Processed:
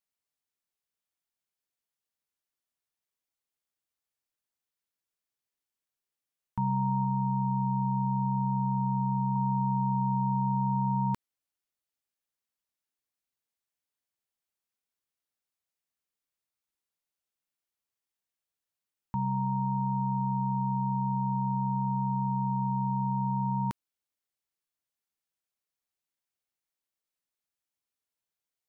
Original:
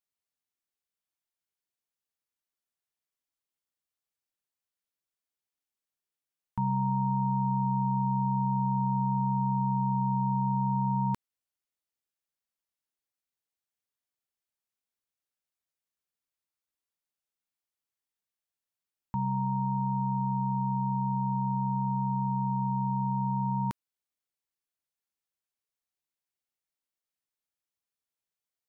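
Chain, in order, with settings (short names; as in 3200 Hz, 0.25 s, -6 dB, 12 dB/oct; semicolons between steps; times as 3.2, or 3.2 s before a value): 7.04–9.36 air absorption 370 m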